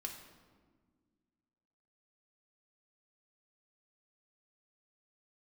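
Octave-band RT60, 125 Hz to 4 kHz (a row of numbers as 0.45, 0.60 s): 2.2, 2.5, 1.8, 1.4, 1.1, 0.95 s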